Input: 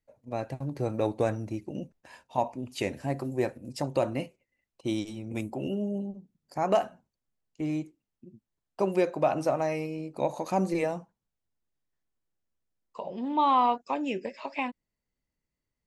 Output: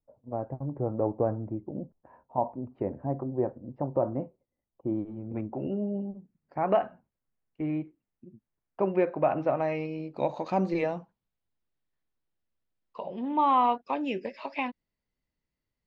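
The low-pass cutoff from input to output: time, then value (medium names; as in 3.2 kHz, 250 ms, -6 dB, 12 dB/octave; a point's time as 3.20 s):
low-pass 24 dB/octave
4.89 s 1.1 kHz
5.99 s 2.4 kHz
9.32 s 2.4 kHz
9.91 s 4.4 kHz
13.02 s 4.4 kHz
13.42 s 2.7 kHz
14.09 s 5.2 kHz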